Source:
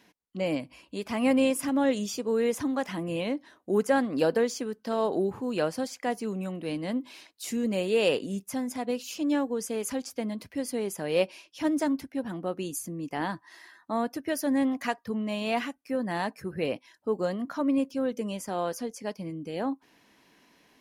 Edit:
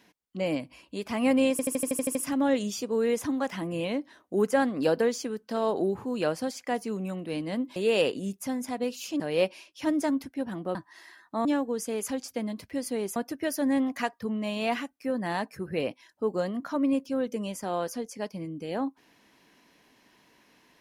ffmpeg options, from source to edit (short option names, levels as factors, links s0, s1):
-filter_complex "[0:a]asplit=14[s0][s1][s2][s3][s4][s5][s6][s7][s8][s9][s10][s11][s12][s13];[s0]atrim=end=1.592[s14];[s1]atrim=start=1.508:end=1.592[s15];[s2]atrim=start=1.508:end=1.592[s16];[s3]atrim=start=1.508:end=1.592[s17];[s4]atrim=start=1.508:end=1.592[s18];[s5]atrim=start=1.508:end=1.592[s19];[s6]atrim=start=1.508:end=1.592[s20];[s7]atrim=start=1.508:end=1.592[s21];[s8]atrim=start=1.508:end=7.122[s22];[s9]atrim=start=7.828:end=9.272[s23];[s10]atrim=start=10.978:end=12.532[s24];[s11]atrim=start=13.308:end=14.012[s25];[s12]atrim=start=9.268:end=10.982[s26];[s13]atrim=start=14.008[s27];[s14][s15]acrossfade=d=0.004:c1=hsin:c2=hsin[s28];[s28][s16]acrossfade=d=0.004:c1=hsin:c2=hsin[s29];[s29][s17]acrossfade=d=0.004:c1=hsin:c2=hsin[s30];[s30][s18]acrossfade=d=0.004:c1=hsin:c2=hsin[s31];[s31][s19]acrossfade=d=0.004:c1=hsin:c2=hsin[s32];[s32][s20]acrossfade=d=0.004:c1=hsin:c2=hsin[s33];[s33][s21]acrossfade=d=0.004:c1=hsin:c2=hsin[s34];[s34][s22]acrossfade=d=0.004:c1=hsin:c2=hsin[s35];[s35][s23]acrossfade=d=0.004:c1=hsin:c2=hsin[s36];[s36][s24]acrossfade=d=0.004:c1=hsin:c2=hsin[s37];[s37][s25]acrossfade=d=0.004:c1=hsin:c2=hsin[s38];[s38][s26]acrossfade=d=0.004:c1=hsin:c2=hsin[s39];[s39][s27]acrossfade=d=0.004:c1=hsin:c2=hsin"